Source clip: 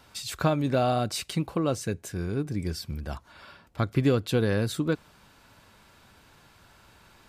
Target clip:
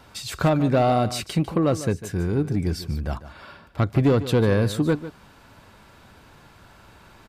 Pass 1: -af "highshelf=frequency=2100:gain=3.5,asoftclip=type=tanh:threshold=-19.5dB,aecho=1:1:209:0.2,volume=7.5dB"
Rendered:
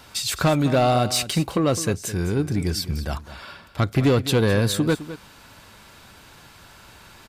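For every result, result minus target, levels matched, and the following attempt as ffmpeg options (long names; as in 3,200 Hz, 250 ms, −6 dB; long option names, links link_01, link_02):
echo 60 ms late; 4,000 Hz band +6.5 dB
-af "highshelf=frequency=2100:gain=3.5,asoftclip=type=tanh:threshold=-19.5dB,aecho=1:1:149:0.2,volume=7.5dB"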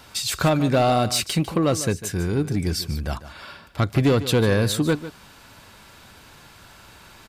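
4,000 Hz band +6.5 dB
-af "highshelf=frequency=2100:gain=-6.5,asoftclip=type=tanh:threshold=-19.5dB,aecho=1:1:149:0.2,volume=7.5dB"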